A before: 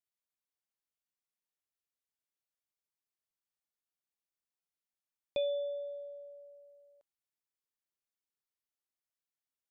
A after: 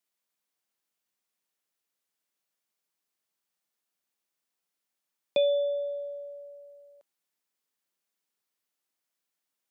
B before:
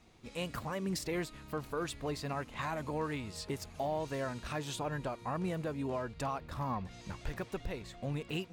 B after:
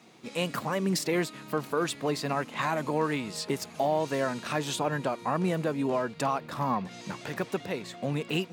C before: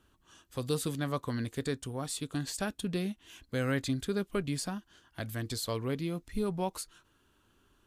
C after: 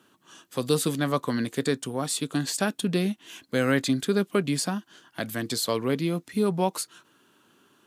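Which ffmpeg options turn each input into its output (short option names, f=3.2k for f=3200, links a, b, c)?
-af "highpass=f=150:w=0.5412,highpass=f=150:w=1.3066,volume=8.5dB"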